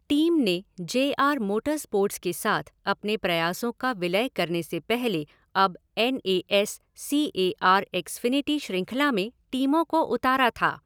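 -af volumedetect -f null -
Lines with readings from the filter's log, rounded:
mean_volume: -25.5 dB
max_volume: -7.3 dB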